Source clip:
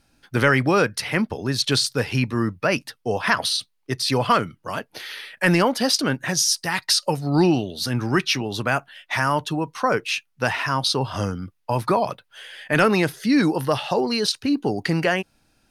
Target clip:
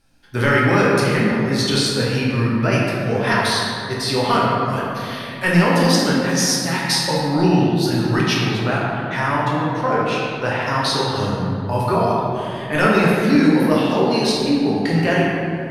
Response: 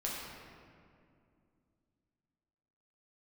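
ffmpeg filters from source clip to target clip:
-filter_complex "[0:a]asettb=1/sr,asplit=3[a][b][c];[a]atrim=end=8.344[d];[b]atrim=start=8.34:end=10.67,asetpts=PTS-STARTPTS,afade=t=in:d=0.004:c=qsin,afade=t=out:st=2.326:d=0.004:c=qsin,highshelf=f=4.7k:g=-10[e];[c]atrim=start=10.666[f];[d][e]acrossfade=d=0.004:c1=hsin:c2=qsin[g];[g][f]acrossfade=d=0.004:c1=qsin:c2=hsin[h];[1:a]atrim=start_sample=2205,asetrate=36603,aresample=44100[i];[h][i]afir=irnorm=-1:irlink=0,volume=-1dB"

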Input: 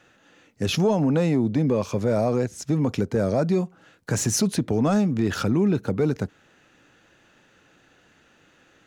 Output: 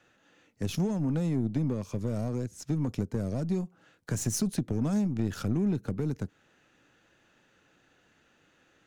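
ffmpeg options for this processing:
-filter_complex "[0:a]aeval=exprs='0.251*(cos(1*acos(clip(val(0)/0.251,-1,1)))-cos(1*PI/2))+0.0355*(cos(3*acos(clip(val(0)/0.251,-1,1)))-cos(3*PI/2))+0.00631*(cos(8*acos(clip(val(0)/0.251,-1,1)))-cos(8*PI/2))':c=same,acrossover=split=280|6200[a][b][c];[b]acompressor=threshold=-36dB:ratio=6[d];[a][d][c]amix=inputs=3:normalize=0,volume=-2.5dB"

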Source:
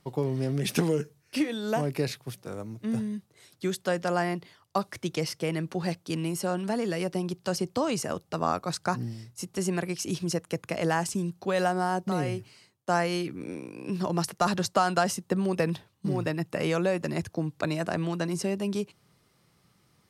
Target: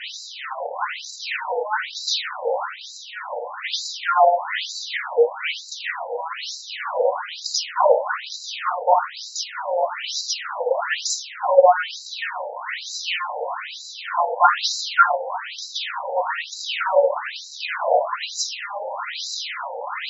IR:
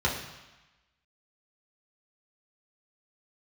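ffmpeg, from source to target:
-filter_complex "[0:a]aeval=exprs='val(0)+0.5*0.0501*sgn(val(0))':c=same[a];[1:a]atrim=start_sample=2205,atrim=end_sample=6615[b];[a][b]afir=irnorm=-1:irlink=0,afftfilt=real='re*between(b*sr/1024,640*pow(5500/640,0.5+0.5*sin(2*PI*1.1*pts/sr))/1.41,640*pow(5500/640,0.5+0.5*sin(2*PI*1.1*pts/sr))*1.41)':imag='im*between(b*sr/1024,640*pow(5500/640,0.5+0.5*sin(2*PI*1.1*pts/sr))/1.41,640*pow(5500/640,0.5+0.5*sin(2*PI*1.1*pts/sr))*1.41)':win_size=1024:overlap=0.75,volume=2dB"

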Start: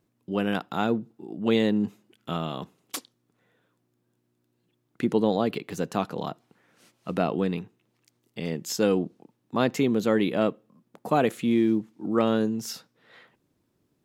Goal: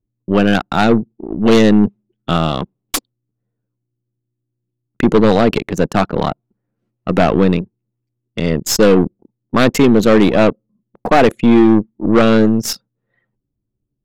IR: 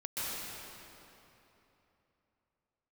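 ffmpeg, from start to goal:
-af "aeval=exprs='0.422*sin(PI/2*2.24*val(0)/0.422)':c=same,anlmdn=251,aeval=exprs='0.447*(cos(1*acos(clip(val(0)/0.447,-1,1)))-cos(1*PI/2))+0.0501*(cos(4*acos(clip(val(0)/0.447,-1,1)))-cos(4*PI/2))+0.00631*(cos(8*acos(clip(val(0)/0.447,-1,1)))-cos(8*PI/2))':c=same,volume=4dB"

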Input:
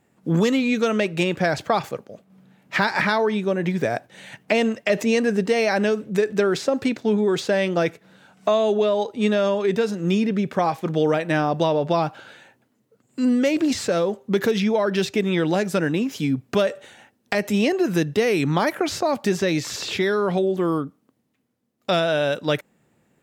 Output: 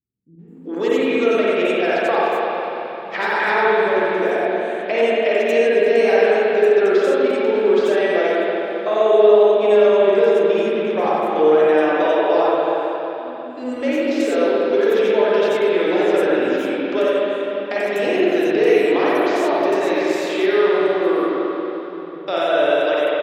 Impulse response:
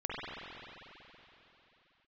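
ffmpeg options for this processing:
-filter_complex "[0:a]lowshelf=f=240:t=q:w=1.5:g=-14,acrossover=split=160|5300[a][b][c];[b]adelay=390[d];[c]adelay=480[e];[a][d][e]amix=inputs=3:normalize=0[f];[1:a]atrim=start_sample=2205[g];[f][g]afir=irnorm=-1:irlink=0,volume=-2dB"

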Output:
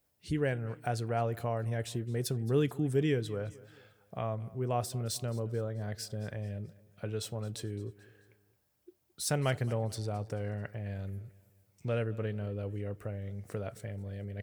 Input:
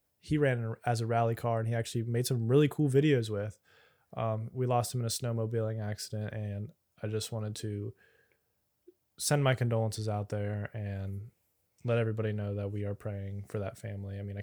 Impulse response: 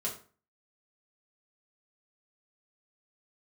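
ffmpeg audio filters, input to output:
-filter_complex "[0:a]asplit=2[a][b];[b]acompressor=threshold=-41dB:ratio=6,volume=0dB[c];[a][c]amix=inputs=2:normalize=0,aecho=1:1:218|436|654:0.0944|0.0444|0.0209,volume=-4.5dB"

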